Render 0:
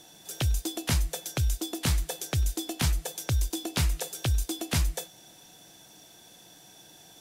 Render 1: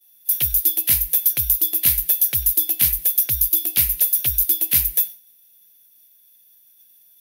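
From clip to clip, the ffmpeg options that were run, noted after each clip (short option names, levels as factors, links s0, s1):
-af "agate=range=0.0224:threshold=0.00891:ratio=3:detection=peak,aexciter=amount=14.1:drive=7.7:freq=11000,highshelf=f=1600:t=q:w=1.5:g=9,volume=0.473"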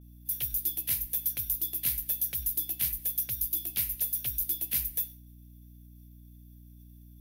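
-af "flanger=delay=4.7:depth=3.1:regen=-79:speed=1.7:shape=triangular,aeval=exprs='val(0)+0.00794*(sin(2*PI*60*n/s)+sin(2*PI*2*60*n/s)/2+sin(2*PI*3*60*n/s)/3+sin(2*PI*4*60*n/s)/4+sin(2*PI*5*60*n/s)/5)':c=same,volume=0.398"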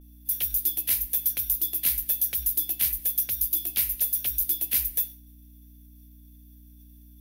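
-af "equalizer=f=120:t=o:w=1.1:g=-13,volume=1.78"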